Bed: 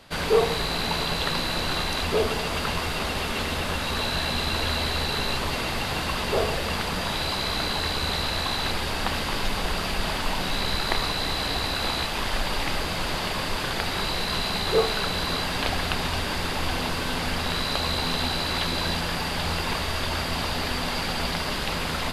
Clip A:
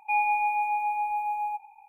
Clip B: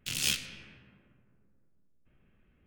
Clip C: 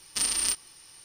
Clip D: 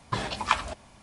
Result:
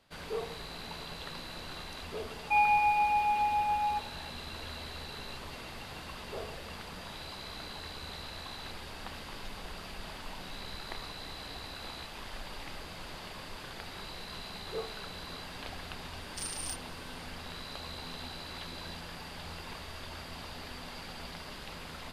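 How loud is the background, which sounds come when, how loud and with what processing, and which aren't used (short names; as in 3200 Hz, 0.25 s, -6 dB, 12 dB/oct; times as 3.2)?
bed -16.5 dB
2.42 add A -0.5 dB
16.21 add C -12.5 dB
not used: B, D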